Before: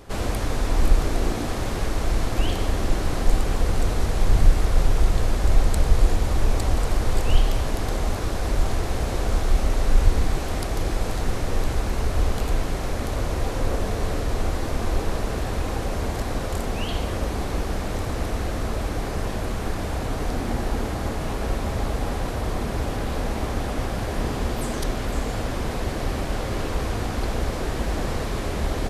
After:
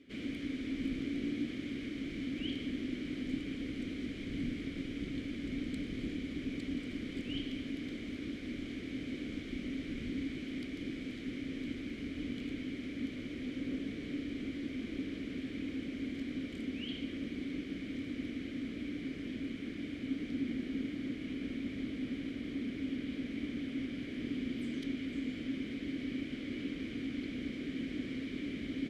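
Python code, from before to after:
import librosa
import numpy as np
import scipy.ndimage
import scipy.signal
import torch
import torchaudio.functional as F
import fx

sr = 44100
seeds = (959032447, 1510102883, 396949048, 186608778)

y = fx.octave_divider(x, sr, octaves=1, level_db=-3.0)
y = fx.vowel_filter(y, sr, vowel='i')
y = y * 10.0 ** (1.0 / 20.0)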